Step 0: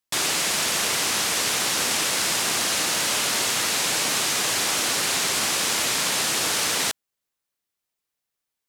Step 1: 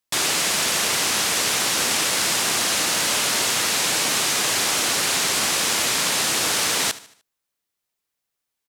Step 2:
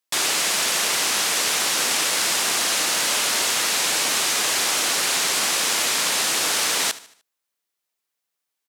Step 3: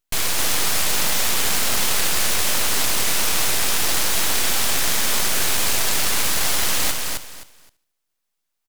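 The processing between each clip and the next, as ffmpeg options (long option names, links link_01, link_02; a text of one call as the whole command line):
ffmpeg -i in.wav -af "aecho=1:1:75|150|225|300:0.133|0.0587|0.0258|0.0114,volume=2dB" out.wav
ffmpeg -i in.wav -af "highpass=frequency=330:poles=1" out.wav
ffmpeg -i in.wav -af "aecho=1:1:260|520|780:0.631|0.139|0.0305,aeval=exprs='abs(val(0))':channel_layout=same,volume=3dB" out.wav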